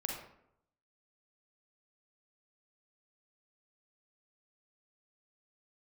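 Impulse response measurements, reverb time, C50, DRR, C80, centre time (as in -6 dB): 0.75 s, 2.0 dB, -0.5 dB, 6.0 dB, 43 ms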